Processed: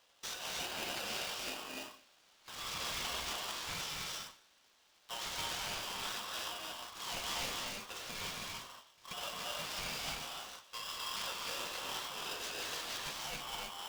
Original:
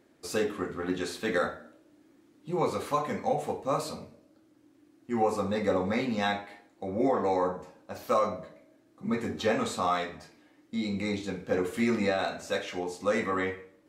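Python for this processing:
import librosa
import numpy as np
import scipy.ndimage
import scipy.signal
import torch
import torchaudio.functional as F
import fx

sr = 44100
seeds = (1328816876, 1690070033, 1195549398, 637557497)

p1 = fx.cvsd(x, sr, bps=32000)
p2 = scipy.signal.sosfilt(scipy.signal.butter(6, 1700.0, 'highpass', fs=sr, output='sos'), p1)
p3 = fx.tilt_eq(p2, sr, slope=-2.0)
p4 = fx.over_compress(p3, sr, threshold_db=-49.0, ratio=-1.0)
p5 = fx.schmitt(p4, sr, flips_db=-51.5)
p6 = p4 + F.gain(torch.from_numpy(p5), -5.5).numpy()
p7 = fx.rev_gated(p6, sr, seeds[0], gate_ms=340, shape='rising', drr_db=-1.5)
p8 = p7 * np.sign(np.sin(2.0 * np.pi * 1100.0 * np.arange(len(p7)) / sr))
y = F.gain(torch.from_numpy(p8), 2.5).numpy()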